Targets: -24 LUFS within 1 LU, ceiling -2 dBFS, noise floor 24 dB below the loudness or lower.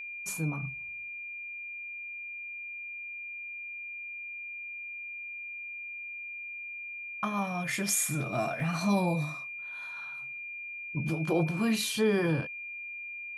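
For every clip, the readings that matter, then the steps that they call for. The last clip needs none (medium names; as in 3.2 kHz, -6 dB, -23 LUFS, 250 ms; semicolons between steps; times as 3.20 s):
dropouts 1; longest dropout 1.3 ms; steady tone 2.4 kHz; tone level -38 dBFS; loudness -33.5 LUFS; peak level -15.5 dBFS; loudness target -24.0 LUFS
-> interpolate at 8.60 s, 1.3 ms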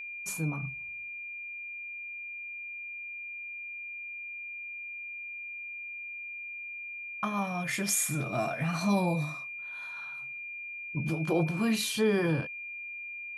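dropouts 0; steady tone 2.4 kHz; tone level -38 dBFS
-> band-stop 2.4 kHz, Q 30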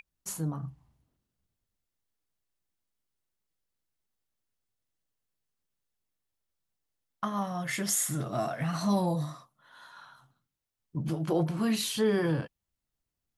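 steady tone not found; loudness -30.5 LUFS; peak level -15.0 dBFS; loudness target -24.0 LUFS
-> trim +6.5 dB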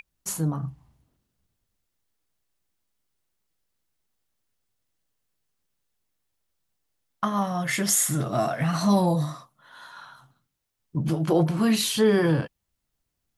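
loudness -24.0 LUFS; peak level -8.5 dBFS; noise floor -80 dBFS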